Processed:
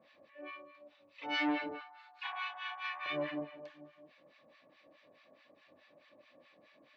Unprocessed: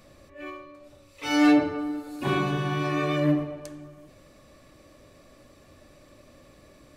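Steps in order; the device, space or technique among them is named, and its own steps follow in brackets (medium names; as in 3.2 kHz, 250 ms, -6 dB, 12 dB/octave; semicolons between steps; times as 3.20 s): guitar amplifier with harmonic tremolo (harmonic tremolo 4.7 Hz, depth 100%, crossover 990 Hz; saturation -20.5 dBFS, distortion -12 dB; cabinet simulation 97–3700 Hz, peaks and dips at 120 Hz -6 dB, 390 Hz -8 dB, 1.3 kHz -8 dB); frequency weighting A; 1.81–3.06 s: elliptic high-pass 780 Hz, stop band 40 dB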